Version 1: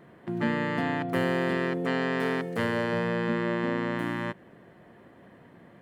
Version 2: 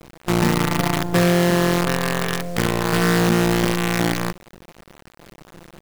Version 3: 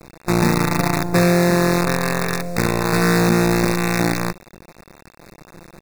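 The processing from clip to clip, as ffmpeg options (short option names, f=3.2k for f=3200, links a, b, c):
-af "aemphasis=mode=reproduction:type=bsi,aecho=1:1:5.9:0.85,acrusher=bits=4:dc=4:mix=0:aa=0.000001,volume=2dB"
-af "asuperstop=centerf=3100:order=20:qfactor=3.7,volume=1.5dB"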